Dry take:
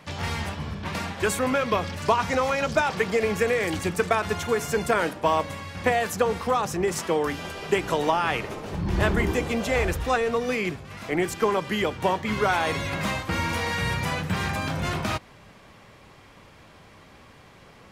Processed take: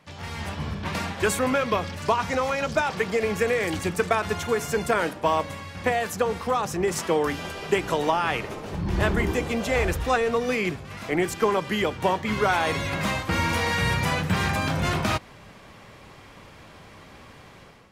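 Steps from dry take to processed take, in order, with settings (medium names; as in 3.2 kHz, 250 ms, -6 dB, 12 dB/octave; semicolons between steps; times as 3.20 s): level rider; trim -8 dB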